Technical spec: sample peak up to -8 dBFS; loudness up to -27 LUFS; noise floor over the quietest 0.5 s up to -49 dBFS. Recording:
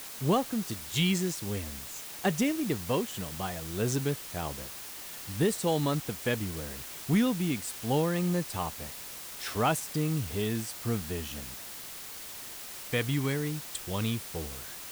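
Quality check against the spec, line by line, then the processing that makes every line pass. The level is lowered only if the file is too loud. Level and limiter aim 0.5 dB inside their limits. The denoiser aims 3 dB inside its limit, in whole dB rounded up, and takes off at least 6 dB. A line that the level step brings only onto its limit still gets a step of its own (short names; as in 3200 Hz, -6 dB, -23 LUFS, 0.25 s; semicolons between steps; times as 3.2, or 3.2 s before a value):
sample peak -16.0 dBFS: OK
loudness -31.5 LUFS: OK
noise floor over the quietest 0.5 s -43 dBFS: fail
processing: denoiser 9 dB, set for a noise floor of -43 dBFS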